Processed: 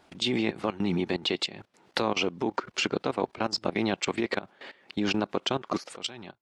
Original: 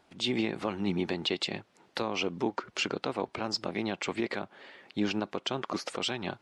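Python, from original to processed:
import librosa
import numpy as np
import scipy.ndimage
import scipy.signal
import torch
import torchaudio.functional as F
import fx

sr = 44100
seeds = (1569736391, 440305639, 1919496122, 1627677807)

y = fx.fade_out_tail(x, sr, length_s=0.55)
y = fx.level_steps(y, sr, step_db=17)
y = y * librosa.db_to_amplitude(7.5)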